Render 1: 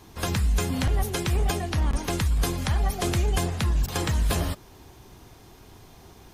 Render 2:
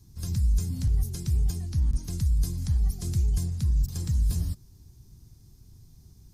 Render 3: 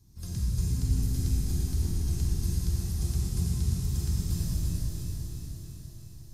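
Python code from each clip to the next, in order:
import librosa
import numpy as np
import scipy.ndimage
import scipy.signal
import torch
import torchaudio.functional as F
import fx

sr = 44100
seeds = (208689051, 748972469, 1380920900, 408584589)

y1 = fx.curve_eq(x, sr, hz=(140.0, 610.0, 3100.0, 4900.0), db=(0, -26, -22, -7))
y2 = fx.echo_feedback(y1, sr, ms=345, feedback_pct=55, wet_db=-6.5)
y2 = fx.rev_freeverb(y2, sr, rt60_s=4.6, hf_ratio=1.0, predelay_ms=5, drr_db=-6.0)
y2 = y2 * 10.0 ** (-6.0 / 20.0)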